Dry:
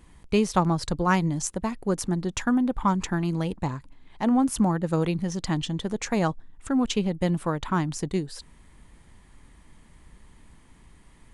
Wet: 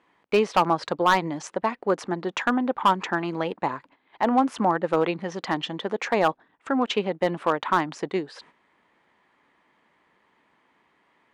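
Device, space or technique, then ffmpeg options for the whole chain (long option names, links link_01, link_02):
walkie-talkie: -af "highpass=450,lowpass=2600,asoftclip=type=hard:threshold=-19.5dB,agate=range=-9dB:threshold=-60dB:ratio=16:detection=peak,volume=8dB"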